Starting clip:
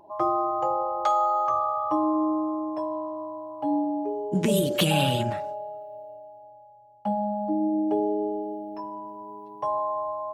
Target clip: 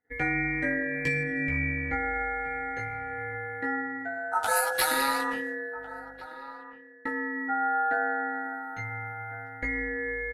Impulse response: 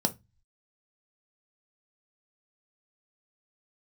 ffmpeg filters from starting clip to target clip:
-filter_complex "[0:a]agate=range=0.0224:threshold=0.0158:ratio=3:detection=peak,flanger=delay=15:depth=2.3:speed=0.22,asplit=2[s0][s1];[s1]adelay=1399,volume=0.1,highshelf=f=4000:g=-31.5[s2];[s0][s2]amix=inputs=2:normalize=0,aeval=exprs='val(0)*sin(2*PI*1100*n/s)':c=same,equalizer=f=11000:w=1.8:g=13,bandreject=f=50:t=h:w=6,bandreject=f=100:t=h:w=6,bandreject=f=150:t=h:w=6,asettb=1/sr,asplit=3[s3][s4][s5];[s3]atrim=end=1.234[s6];[s4]atrim=start=1.23:end=2.14,asetpts=PTS-STARTPTS,afade=t=in:d=0.004:c=qsin,afade=t=out:st=0.906:d=0.004:c=qsin,highshelf=f=5500:g=-11[s7];[s5]atrim=start=2.136[s8];[s6][s7]acrossfade=d=0.004:c1=hsin:c2=qsin[s9];[s9][s8]acrossfade=d=0.004:c1=qsin:c2=hsin,asettb=1/sr,asplit=3[s10][s11][s12];[s10]atrim=end=5.764[s13];[s11]atrim=start=5.76:end=6.26,asetpts=PTS-STARTPTS,afade=t=in:d=0.004:c=qsin,afade=t=out:st=0.496:d=0.004:c=qsin,aeval=exprs='val(0)+0.000501*(sin(2*PI*50*n/s)+sin(2*PI*2*50*n/s)/2+sin(2*PI*3*50*n/s)/3+sin(2*PI*4*50*n/s)/4+sin(2*PI*5*50*n/s)/5)':c=same[s14];[s12]atrim=start=6.256[s15];[s13][s14]acrossfade=d=0.004:c1=hsin:c2=qsin[s16];[s16][s15]acrossfade=d=0.004:c1=qsin:c2=hsin,asplit=2[s17][s18];[s18]acompressor=threshold=0.00891:ratio=6,volume=1.33[s19];[s17][s19]amix=inputs=2:normalize=0"

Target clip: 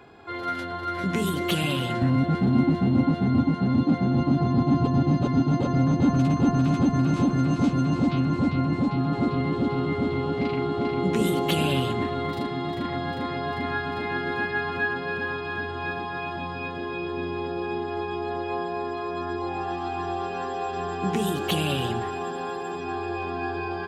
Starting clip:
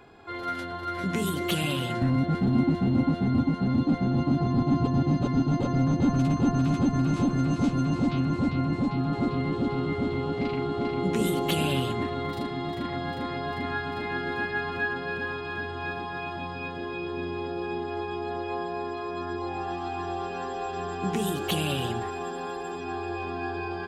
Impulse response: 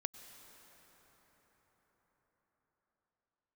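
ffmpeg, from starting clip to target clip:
-filter_complex "[0:a]highpass=55,asplit=2[s0][s1];[1:a]atrim=start_sample=2205,lowpass=6700[s2];[s1][s2]afir=irnorm=-1:irlink=0,volume=0.422[s3];[s0][s3]amix=inputs=2:normalize=0"

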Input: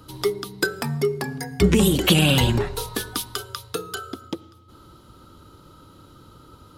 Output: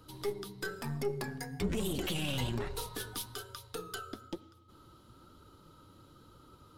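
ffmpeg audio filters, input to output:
-af "aeval=exprs='0.708*(cos(1*acos(clip(val(0)/0.708,-1,1)))-cos(1*PI/2))+0.0447*(cos(8*acos(clip(val(0)/0.708,-1,1)))-cos(8*PI/2))':c=same,alimiter=limit=0.158:level=0:latency=1:release=26,flanger=delay=1.7:depth=9.1:regen=64:speed=1.1:shape=triangular,volume=0.562"

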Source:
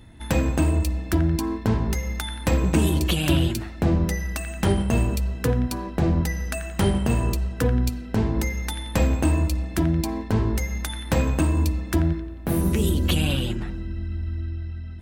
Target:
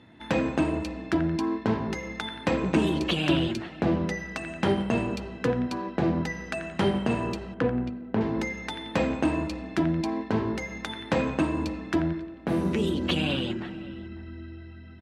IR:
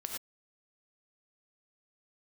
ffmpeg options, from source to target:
-filter_complex "[0:a]asettb=1/sr,asplit=3[s0][s1][s2];[s0]atrim=end=7.544[s3];[s1]atrim=start=7.54:end=8.21,asetpts=PTS-STARTPTS,afade=t=in:d=0.004:c=qsin,afade=t=out:st=0.666:d=0.004:c=qsin,adynamicsmooth=sensitivity=2:basefreq=820[s4];[s2]atrim=start=8.206[s5];[s3][s4]acrossfade=d=0.004:c1=hsin:c2=qsin[s6];[s6][s5]acrossfade=d=0.004:c1=qsin:c2=hsin,highpass=190,lowpass=3900,asplit=2[s7][s8];[s8]adelay=548.1,volume=0.126,highshelf=f=4000:g=-12.3[s9];[s7][s9]amix=inputs=2:normalize=0"

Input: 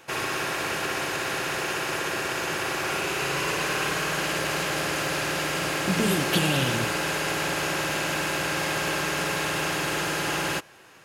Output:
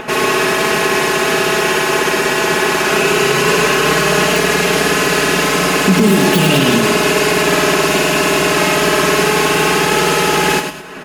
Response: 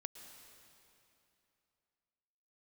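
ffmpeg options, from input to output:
-filter_complex "[0:a]equalizer=f=290:t=o:w=1.2:g=7.5,aecho=1:1:4.7:0.81,acrossover=split=3000[s0][s1];[s0]acompressor=mode=upward:threshold=0.0355:ratio=2.5[s2];[s1]aeval=exprs='(mod(11.2*val(0)+1,2)-1)/11.2':c=same[s3];[s2][s3]amix=inputs=2:normalize=0,aecho=1:1:101|208:0.447|0.15,asplit=2[s4][s5];[1:a]atrim=start_sample=2205[s6];[s5][s6]afir=irnorm=-1:irlink=0,volume=0.299[s7];[s4][s7]amix=inputs=2:normalize=0,alimiter=level_in=2.99:limit=0.891:release=50:level=0:latency=1,volume=0.891"

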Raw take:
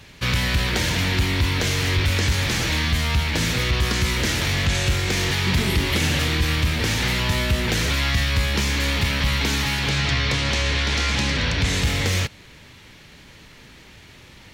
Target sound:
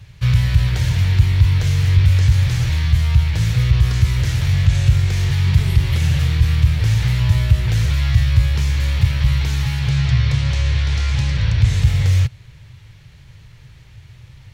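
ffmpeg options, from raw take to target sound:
-af "lowshelf=f=170:t=q:w=3:g=11.5,volume=0.473"

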